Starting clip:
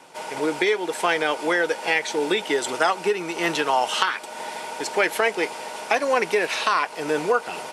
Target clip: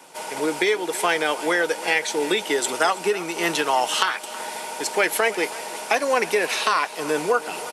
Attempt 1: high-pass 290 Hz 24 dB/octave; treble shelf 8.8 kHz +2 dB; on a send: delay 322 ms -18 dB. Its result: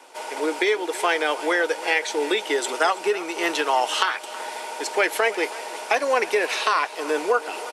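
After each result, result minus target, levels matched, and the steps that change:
125 Hz band -17.0 dB; 8 kHz band -4.0 dB
change: high-pass 130 Hz 24 dB/octave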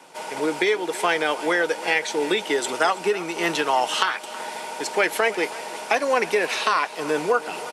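8 kHz band -4.0 dB
change: treble shelf 8.8 kHz +13 dB

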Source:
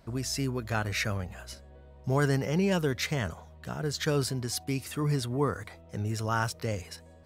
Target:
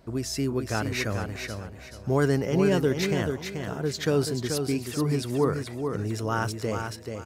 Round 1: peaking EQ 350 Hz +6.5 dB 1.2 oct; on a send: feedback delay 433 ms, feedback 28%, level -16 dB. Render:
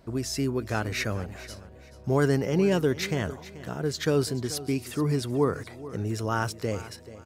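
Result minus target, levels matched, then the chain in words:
echo-to-direct -10 dB
peaking EQ 350 Hz +6.5 dB 1.2 oct; on a send: feedback delay 433 ms, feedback 28%, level -6 dB

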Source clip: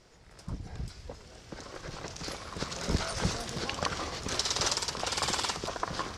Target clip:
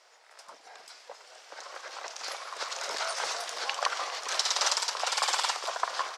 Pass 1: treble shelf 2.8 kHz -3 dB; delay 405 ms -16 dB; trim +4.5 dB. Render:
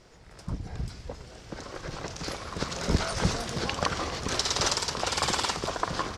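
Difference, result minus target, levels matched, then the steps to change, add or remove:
500 Hz band +5.5 dB
add first: high-pass 620 Hz 24 dB/octave

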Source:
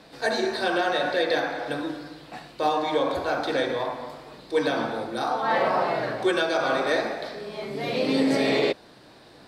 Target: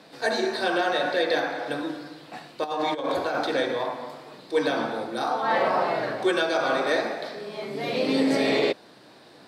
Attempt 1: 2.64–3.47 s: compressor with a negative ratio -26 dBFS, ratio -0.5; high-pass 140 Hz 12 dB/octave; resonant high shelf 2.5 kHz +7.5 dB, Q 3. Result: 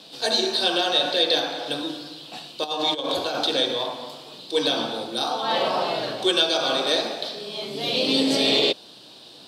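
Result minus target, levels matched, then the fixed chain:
4 kHz band +9.0 dB
2.64–3.47 s: compressor with a negative ratio -26 dBFS, ratio -0.5; high-pass 140 Hz 12 dB/octave

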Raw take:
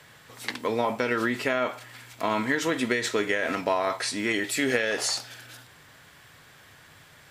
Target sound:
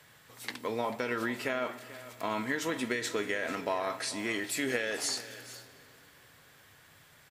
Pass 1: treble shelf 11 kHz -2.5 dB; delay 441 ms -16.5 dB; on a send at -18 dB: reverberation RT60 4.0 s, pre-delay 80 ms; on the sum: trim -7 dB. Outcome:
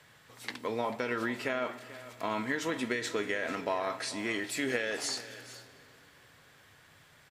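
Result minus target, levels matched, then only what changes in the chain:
8 kHz band -2.5 dB
change: treble shelf 11 kHz +8.5 dB

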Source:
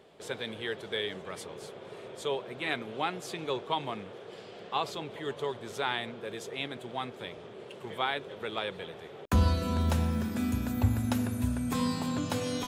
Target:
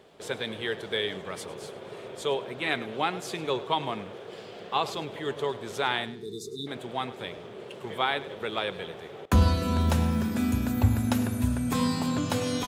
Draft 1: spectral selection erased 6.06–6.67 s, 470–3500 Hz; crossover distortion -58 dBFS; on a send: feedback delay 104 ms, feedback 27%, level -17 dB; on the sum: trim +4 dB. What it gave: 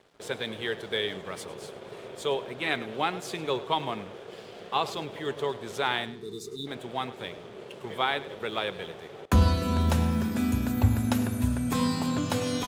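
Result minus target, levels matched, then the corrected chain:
crossover distortion: distortion +11 dB
spectral selection erased 6.06–6.67 s, 470–3500 Hz; crossover distortion -69.5 dBFS; on a send: feedback delay 104 ms, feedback 27%, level -17 dB; on the sum: trim +4 dB

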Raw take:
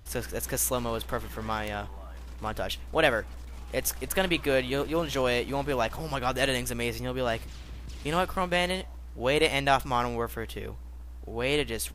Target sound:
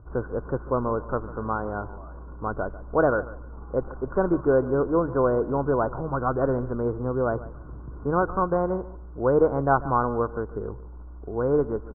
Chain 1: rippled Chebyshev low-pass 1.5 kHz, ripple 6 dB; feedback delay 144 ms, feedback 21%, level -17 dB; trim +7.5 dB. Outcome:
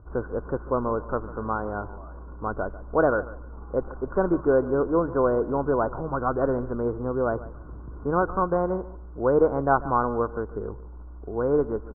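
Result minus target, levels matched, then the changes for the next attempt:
125 Hz band -2.5 dB
add after rippled Chebyshev low-pass: peaking EQ 130 Hz +4.5 dB 0.45 oct

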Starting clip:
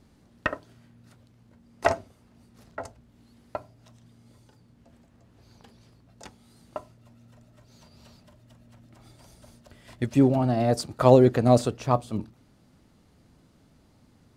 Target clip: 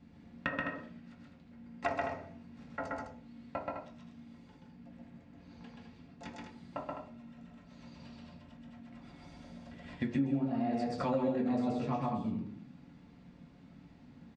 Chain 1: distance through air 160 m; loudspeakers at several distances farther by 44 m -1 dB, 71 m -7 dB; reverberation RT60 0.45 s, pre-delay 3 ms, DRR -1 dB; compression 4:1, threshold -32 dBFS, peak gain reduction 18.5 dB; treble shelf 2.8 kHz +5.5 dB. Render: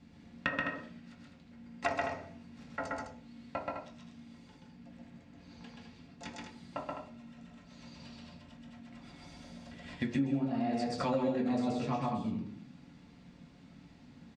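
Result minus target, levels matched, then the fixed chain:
4 kHz band +5.5 dB
distance through air 160 m; loudspeakers at several distances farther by 44 m -1 dB, 71 m -7 dB; reverberation RT60 0.45 s, pre-delay 3 ms, DRR -1 dB; compression 4:1, threshold -32 dBFS, peak gain reduction 18.5 dB; treble shelf 2.8 kHz -3.5 dB

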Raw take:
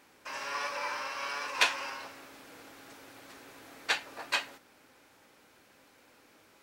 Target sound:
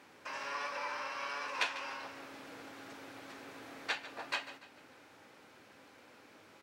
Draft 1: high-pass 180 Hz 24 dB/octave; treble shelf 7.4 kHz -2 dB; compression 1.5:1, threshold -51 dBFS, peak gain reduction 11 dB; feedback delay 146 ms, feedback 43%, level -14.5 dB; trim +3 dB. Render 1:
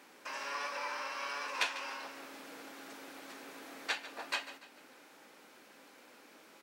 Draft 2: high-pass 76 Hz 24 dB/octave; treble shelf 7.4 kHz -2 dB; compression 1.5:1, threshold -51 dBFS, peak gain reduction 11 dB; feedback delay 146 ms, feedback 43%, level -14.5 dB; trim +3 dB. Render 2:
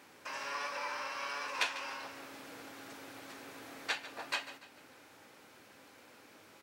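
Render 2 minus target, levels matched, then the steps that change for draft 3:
8 kHz band +3.5 dB
change: treble shelf 7.4 kHz -12 dB

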